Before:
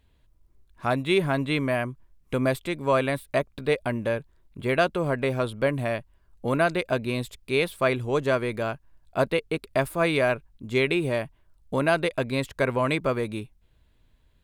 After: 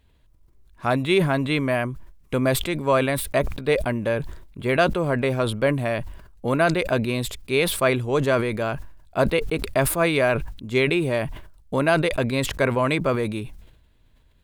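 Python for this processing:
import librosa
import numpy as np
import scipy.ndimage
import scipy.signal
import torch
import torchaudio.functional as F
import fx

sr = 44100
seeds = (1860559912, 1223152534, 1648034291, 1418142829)

y = fx.sustainer(x, sr, db_per_s=69.0)
y = y * librosa.db_to_amplitude(2.5)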